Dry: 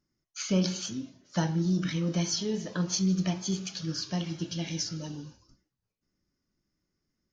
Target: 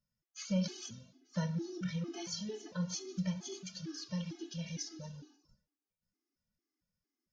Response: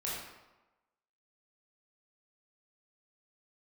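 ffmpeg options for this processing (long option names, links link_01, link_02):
-filter_complex "[0:a]asplit=2[link_01][link_02];[1:a]atrim=start_sample=2205,adelay=57[link_03];[link_02][link_03]afir=irnorm=-1:irlink=0,volume=-26dB[link_04];[link_01][link_04]amix=inputs=2:normalize=0,afftfilt=real='re*gt(sin(2*PI*2.2*pts/sr)*(1-2*mod(floor(b*sr/1024/220),2)),0)':imag='im*gt(sin(2*PI*2.2*pts/sr)*(1-2*mod(floor(b*sr/1024/220),2)),0)':win_size=1024:overlap=0.75,volume=-6dB"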